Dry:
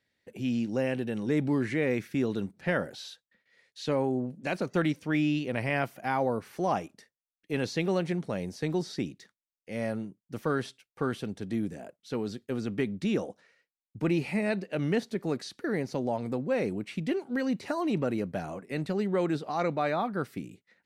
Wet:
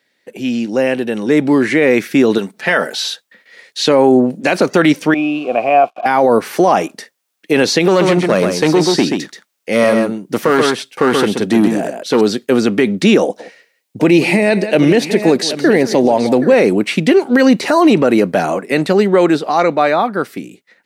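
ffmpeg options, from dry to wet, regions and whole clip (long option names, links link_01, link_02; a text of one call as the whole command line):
ffmpeg -i in.wav -filter_complex "[0:a]asettb=1/sr,asplit=3[link_01][link_02][link_03];[link_01]atrim=end=2.384[link_04];[link_02]atrim=start=2.38:end=3.05,asetpts=PTS-STARTPTS,afade=type=in:duration=0.004:curve=qsin,afade=type=out:start_time=0.666:duration=0.004:curve=qsin,equalizer=frequency=170:width=0.32:gain=-8.5,aecho=1:1:4.6:0.36,atrim=end_sample=29547[link_05];[link_03]atrim=start=3.046[link_06];[link_04][link_05]acrossfade=duration=0.004:curve1=hsin:curve2=qsin[link_07];[link_07][link_06]acrossfade=duration=0.004:curve1=qsin:curve2=hsin,asettb=1/sr,asplit=3[link_08][link_09][link_10];[link_08]atrim=end=5.144[link_11];[link_09]atrim=start=5.14:end=6.06,asetpts=PTS-STARTPTS,afade=type=in:duration=0.004:curve=qsin,afade=type=out:start_time=0.916:duration=0.004:curve=qsin,equalizer=frequency=180:width=0.39:gain=12.5,acrusher=bits=6:mix=0:aa=0.5,asplit=3[link_12][link_13][link_14];[link_12]bandpass=frequency=730:width_type=q:width=8,volume=0dB[link_15];[link_13]bandpass=frequency=1090:width_type=q:width=8,volume=-6dB[link_16];[link_14]bandpass=frequency=2440:width_type=q:width=8,volume=-9dB[link_17];[link_15][link_16][link_17]amix=inputs=3:normalize=0[link_18];[link_10]atrim=start=6.056[link_19];[link_11][link_18]acrossfade=duration=0.004:curve1=hsin:curve2=qsin[link_20];[link_20][link_19]acrossfade=duration=0.004:curve1=qsin:curve2=hsin,asettb=1/sr,asplit=3[link_21][link_22][link_23];[link_21]atrim=end=7.884[link_24];[link_22]atrim=start=7.88:end=12.21,asetpts=PTS-STARTPTS,afade=type=in:duration=0.004:curve=qsin,afade=type=out:start_time=4.326:duration=0.004:curve=qsin,aeval=exprs='clip(val(0),-1,0.0531)':channel_layout=same,aecho=1:1:130:0.501,atrim=end_sample=190953[link_25];[link_23]atrim=start=12.206[link_26];[link_24][link_25]acrossfade=duration=0.004:curve1=hsin:curve2=qsin[link_27];[link_27][link_26]acrossfade=duration=0.004:curve1=qsin:curve2=hsin,asettb=1/sr,asplit=3[link_28][link_29][link_30];[link_28]atrim=end=13.224[link_31];[link_29]atrim=start=13.22:end=16.54,asetpts=PTS-STARTPTS,afade=type=in:duration=0.004:curve=qsin,afade=type=out:start_time=3.316:duration=0.004:curve=qsin,equalizer=frequency=1300:width_type=o:width=0.55:gain=-7,aecho=1:1:174|777:0.141|0.2,atrim=end_sample=146412[link_32];[link_30]atrim=start=16.536[link_33];[link_31][link_32]acrossfade=duration=0.004:curve1=hsin:curve2=qsin[link_34];[link_34][link_33]acrossfade=duration=0.004:curve1=qsin:curve2=hsin,highpass=260,dynaudnorm=framelen=130:gausssize=31:maxgain=8.5dB,alimiter=level_in=16dB:limit=-1dB:release=50:level=0:latency=1,volume=-1dB" out.wav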